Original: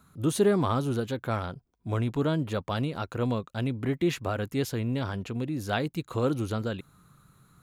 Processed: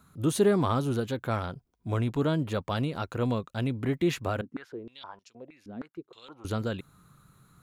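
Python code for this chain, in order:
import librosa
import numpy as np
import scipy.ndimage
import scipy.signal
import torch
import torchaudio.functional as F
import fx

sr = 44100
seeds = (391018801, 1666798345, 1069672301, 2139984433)

y = fx.filter_held_bandpass(x, sr, hz=6.4, low_hz=250.0, high_hz=5500.0, at=(4.41, 6.45))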